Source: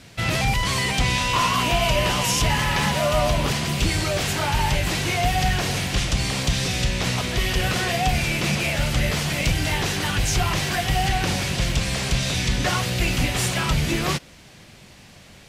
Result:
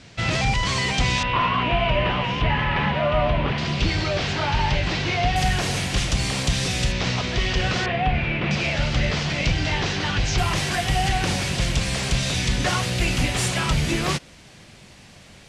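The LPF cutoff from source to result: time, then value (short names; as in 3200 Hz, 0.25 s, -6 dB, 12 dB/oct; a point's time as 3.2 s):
LPF 24 dB/oct
7400 Hz
from 1.23 s 3000 Hz
from 3.58 s 5200 Hz
from 5.36 s 11000 Hz
from 6.92 s 6100 Hz
from 7.86 s 2900 Hz
from 8.51 s 5800 Hz
from 10.38 s 11000 Hz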